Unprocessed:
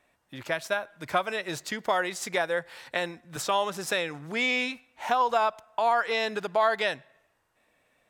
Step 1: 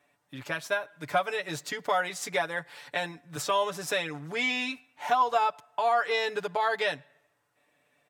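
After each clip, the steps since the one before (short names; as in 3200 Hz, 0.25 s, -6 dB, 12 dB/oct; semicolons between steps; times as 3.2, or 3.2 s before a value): HPF 72 Hz; comb 6.9 ms, depth 76%; gain -3 dB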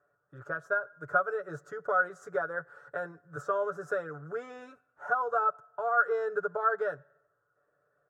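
EQ curve 150 Hz 0 dB, 260 Hz -14 dB, 390 Hz +4 dB, 560 Hz +3 dB, 930 Hz -11 dB, 1400 Hz +12 dB, 2200 Hz -27 dB, 4300 Hz -28 dB, 6700 Hz -16 dB, 11000 Hz -24 dB; gain -3 dB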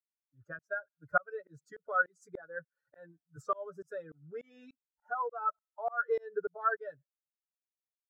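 per-bin expansion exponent 2; tremolo saw up 3.4 Hz, depth 100%; gain +3 dB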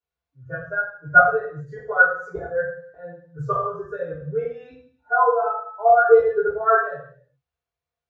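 reverb RT60 0.60 s, pre-delay 3 ms, DRR -13.5 dB; gain -10 dB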